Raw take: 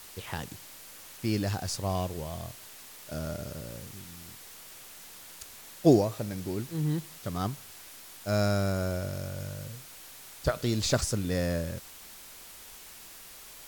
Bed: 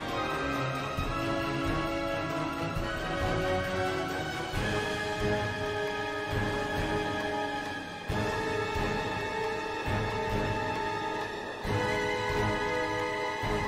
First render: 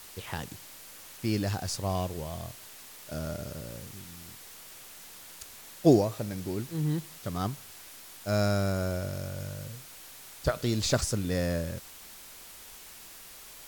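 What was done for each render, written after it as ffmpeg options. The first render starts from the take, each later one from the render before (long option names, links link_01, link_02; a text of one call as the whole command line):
ffmpeg -i in.wav -af anull out.wav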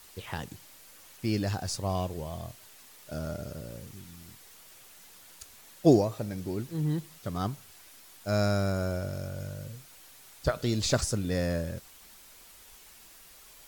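ffmpeg -i in.wav -af "afftdn=noise_reduction=6:noise_floor=-49" out.wav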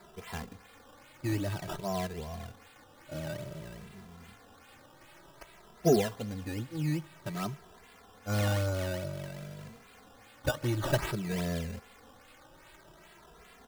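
ffmpeg -i in.wav -filter_complex "[0:a]acrusher=samples=14:mix=1:aa=0.000001:lfo=1:lforange=14:lforate=2.5,asplit=2[link_01][link_02];[link_02]adelay=2.6,afreqshift=0.53[link_03];[link_01][link_03]amix=inputs=2:normalize=1" out.wav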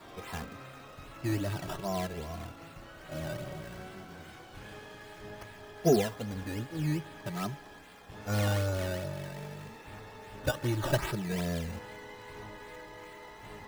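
ffmpeg -i in.wav -i bed.wav -filter_complex "[1:a]volume=-17dB[link_01];[0:a][link_01]amix=inputs=2:normalize=0" out.wav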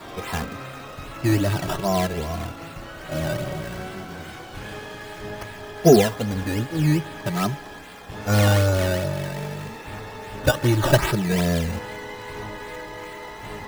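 ffmpeg -i in.wav -af "volume=11.5dB,alimiter=limit=-2dB:level=0:latency=1" out.wav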